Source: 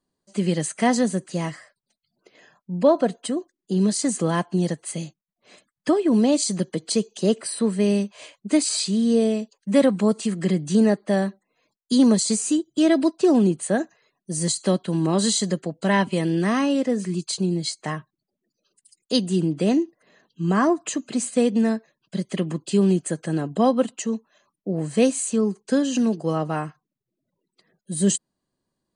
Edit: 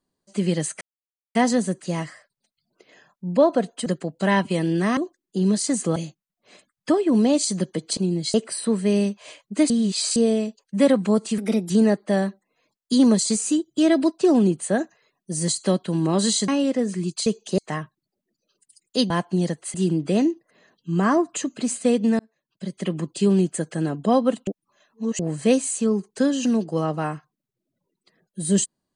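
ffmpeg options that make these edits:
-filter_complex "[0:a]asplit=19[s0][s1][s2][s3][s4][s5][s6][s7][s8][s9][s10][s11][s12][s13][s14][s15][s16][s17][s18];[s0]atrim=end=0.81,asetpts=PTS-STARTPTS,afade=t=out:st=0.806:d=0.004:c=hsin,apad=pad_dur=0.54[s19];[s1]atrim=start=0.81:end=3.322,asetpts=PTS-STARTPTS,afade=t=in:d=0.004:c=hsin[s20];[s2]atrim=start=15.478:end=16.592[s21];[s3]atrim=start=3.318:end=4.312[s22];[s4]atrim=start=4.948:end=6.962[s23];[s5]atrim=start=17.368:end=17.742[s24];[s6]atrim=start=7.278:end=8.642[s25];[s7]atrim=start=8.638:end=9.102,asetpts=PTS-STARTPTS,areverse[s26];[s8]atrim=start=9.098:end=10.324[s27];[s9]atrim=start=10.32:end=10.7,asetpts=PTS-STARTPTS,asetrate=52038,aresample=44100[s28];[s10]atrim=start=10.696:end=15.482[s29];[s11]atrim=start=16.588:end=17.372[s30];[s12]atrim=start=6.958:end=7.282[s31];[s13]atrim=start=17.738:end=19.262[s32];[s14]atrim=start=4.308:end=4.952[s33];[s15]atrim=start=19.258:end=21.71,asetpts=PTS-STARTPTS,afade=t=out:st=2.448:d=0.004:c=hsin[s34];[s16]atrim=start=21.71:end=23.992,asetpts=PTS-STARTPTS,afade=t=in:d=0.78[s35];[s17]atrim=start=23.988:end=24.712,asetpts=PTS-STARTPTS,areverse[s36];[s18]atrim=start=24.708[s37];[s19][s20]concat=n=2:v=0:a=1[s38];[s38][s21]acrossfade=d=0.004:c1=hsin:c2=hsin[s39];[s39][s22]acrossfade=d=0.004:c1=hsin:c2=hsin[s40];[s40][s23]acrossfade=d=0.004:c1=hsin:c2=hsin[s41];[s41][s24]acrossfade=d=0.004:c1=hsin:c2=hsin[s42];[s42][s25]acrossfade=d=0.004:c1=hsin:c2=hsin[s43];[s43][s26]acrossfade=d=0.004:c1=hsin:c2=hsin[s44];[s44][s27]acrossfade=d=0.004:c1=hsin:c2=hsin[s45];[s45][s28]acrossfade=d=0.004:c1=hsin:c2=hsin[s46];[s46][s29]acrossfade=d=0.004:c1=hsin:c2=hsin[s47];[s47][s30]acrossfade=d=0.004:c1=hsin:c2=hsin[s48];[s48][s31]acrossfade=d=0.004:c1=hsin:c2=hsin[s49];[s49][s32]acrossfade=d=0.004:c1=hsin:c2=hsin[s50];[s50][s33]acrossfade=d=0.004:c1=hsin:c2=hsin[s51];[s34][s35]concat=n=2:v=0:a=1[s52];[s51][s52]acrossfade=d=0.004:c1=hsin:c2=hsin[s53];[s53][s36]acrossfade=d=0.004:c1=hsin:c2=hsin[s54];[s54][s37]acrossfade=d=0.004:c1=hsin:c2=hsin"

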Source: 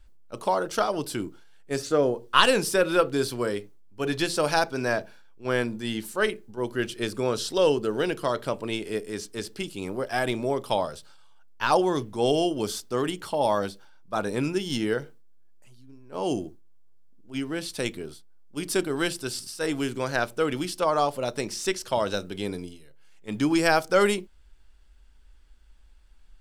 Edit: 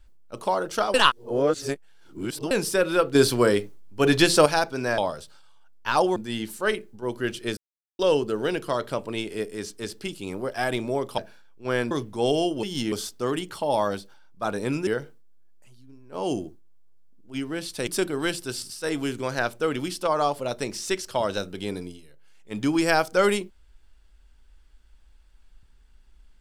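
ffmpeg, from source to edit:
-filter_complex "[0:a]asplit=15[s0][s1][s2][s3][s4][s5][s6][s7][s8][s9][s10][s11][s12][s13][s14];[s0]atrim=end=0.942[s15];[s1]atrim=start=0.938:end=2.512,asetpts=PTS-STARTPTS,areverse[s16];[s2]atrim=start=2.508:end=3.152[s17];[s3]atrim=start=3.148:end=4.462,asetpts=PTS-STARTPTS,volume=2.51[s18];[s4]atrim=start=4.458:end=4.982[s19];[s5]atrim=start=10.728:end=11.912[s20];[s6]atrim=start=5.708:end=7.12,asetpts=PTS-STARTPTS,afade=t=out:st=1.408:d=0.004:c=hsin[s21];[s7]atrim=start=7.12:end=7.54,asetpts=PTS-STARTPTS,volume=0[s22];[s8]atrim=start=7.54:end=10.732,asetpts=PTS-STARTPTS,afade=t=in:d=0.004:c=hsin[s23];[s9]atrim=start=4.978:end=5.712[s24];[s10]atrim=start=11.908:end=12.632[s25];[s11]atrim=start=14.578:end=14.872[s26];[s12]atrim=start=12.628:end=14.582[s27];[s13]atrim=start=14.868:end=17.872[s28];[s14]atrim=start=18.638[s29];[s15][s16]acrossfade=d=0.004:c1=hsin:c2=hsin[s30];[s30][s17]acrossfade=d=0.004:c1=hsin:c2=hsin[s31];[s31][s18]acrossfade=d=0.004:c1=hsin:c2=hsin[s32];[s32][s19]acrossfade=d=0.004:c1=hsin:c2=hsin[s33];[s33][s20]acrossfade=d=0.004:c1=hsin:c2=hsin[s34];[s21][s22][s23]concat=n=3:v=0:a=1[s35];[s34][s35]acrossfade=d=0.004:c1=hsin:c2=hsin[s36];[s36][s24]acrossfade=d=0.004:c1=hsin:c2=hsin[s37];[s37][s25]acrossfade=d=0.004:c1=hsin:c2=hsin[s38];[s38][s26]acrossfade=d=0.004:c1=hsin:c2=hsin[s39];[s39][s27]acrossfade=d=0.004:c1=hsin:c2=hsin[s40];[s40][s28]acrossfade=d=0.004:c1=hsin:c2=hsin[s41];[s41][s29]acrossfade=d=0.004:c1=hsin:c2=hsin"

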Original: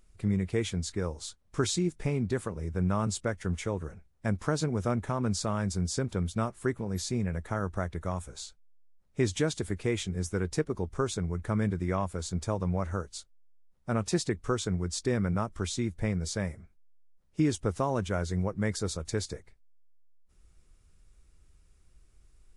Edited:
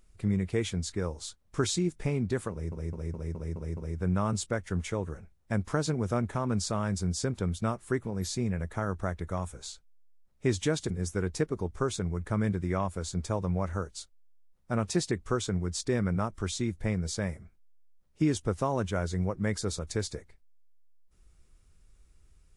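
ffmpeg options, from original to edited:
-filter_complex "[0:a]asplit=8[s0][s1][s2][s3][s4][s5][s6][s7];[s0]atrim=end=2.722[s8];[s1]atrim=start=2.508:end=2.722[s9];[s2]atrim=start=2.508:end=2.722[s10];[s3]atrim=start=2.508:end=2.722[s11];[s4]atrim=start=2.508:end=2.722[s12];[s5]atrim=start=2.508:end=2.722[s13];[s6]atrim=start=2.508:end=9.642[s14];[s7]atrim=start=10.078[s15];[s8][s9]acrossfade=d=0.004:c1=hsin:c2=hsin[s16];[s16][s10]acrossfade=d=0.004:c1=hsin:c2=hsin[s17];[s17][s11]acrossfade=d=0.004:c1=hsin:c2=hsin[s18];[s18][s12]acrossfade=d=0.004:c1=hsin:c2=hsin[s19];[s19][s13]acrossfade=d=0.004:c1=hsin:c2=hsin[s20];[s20][s14]acrossfade=d=0.004:c1=hsin:c2=hsin[s21];[s21][s15]acrossfade=d=0.004:c1=hsin:c2=hsin"

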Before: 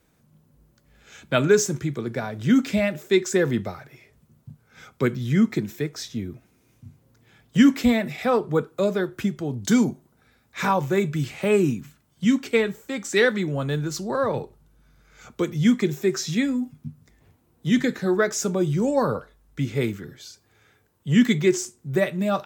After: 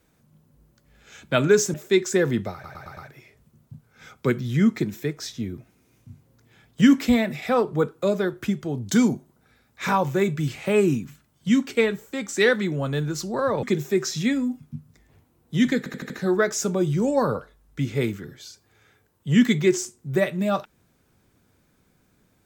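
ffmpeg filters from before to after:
-filter_complex "[0:a]asplit=11[s0][s1][s2][s3][s4][s5][s6][s7][s8][s9][s10];[s0]atrim=end=1.742[s11];[s1]atrim=start=2.938:end=3.842[s12];[s2]atrim=start=3.728:end=3.842[s13];[s3]atrim=start=3.728:end=3.842[s14];[s4]atrim=start=3.728:end=3.842[s15];[s5]atrim=start=3.728:end=14.392[s16];[s6]atrim=start=15.748:end=17.982[s17];[s7]atrim=start=17.898:end=17.982[s18];[s8]atrim=start=17.898:end=17.982[s19];[s9]atrim=start=17.898:end=17.982[s20];[s10]atrim=start=17.898[s21];[s11][s12]acrossfade=d=0.004:c1=hsin:c2=hsin[s22];[s22][s13]acrossfade=d=0.004:c1=hsin:c2=hsin[s23];[s23][s14]acrossfade=d=0.004:c1=hsin:c2=hsin[s24];[s24][s15]acrossfade=d=0.004:c1=hsin:c2=hsin[s25];[s25][s16]acrossfade=d=0.004:c1=hsin:c2=hsin[s26];[s26][s17]acrossfade=d=0.004:c1=hsin:c2=hsin[s27];[s27][s18]acrossfade=d=0.004:c1=hsin:c2=hsin[s28];[s28][s19]acrossfade=d=0.004:c1=hsin:c2=hsin[s29];[s29][s20]acrossfade=d=0.004:c1=hsin:c2=hsin[s30];[s30][s21]acrossfade=d=0.004:c1=hsin:c2=hsin"

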